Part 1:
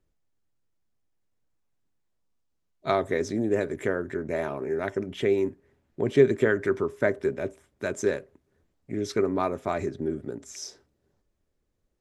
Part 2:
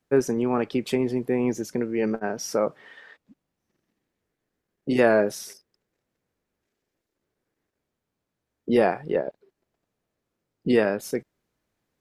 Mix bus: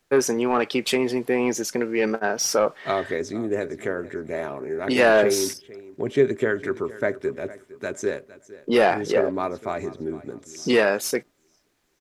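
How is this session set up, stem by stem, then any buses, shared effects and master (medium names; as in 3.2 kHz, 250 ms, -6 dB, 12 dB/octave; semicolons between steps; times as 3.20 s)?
+0.5 dB, 0.00 s, no send, echo send -18 dB, bass shelf 150 Hz -6 dB
-2.0 dB, 0.00 s, no send, no echo send, treble shelf 3.6 kHz +11 dB; overdrive pedal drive 16 dB, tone 3.5 kHz, clips at -5 dBFS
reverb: none
echo: feedback delay 459 ms, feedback 30%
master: none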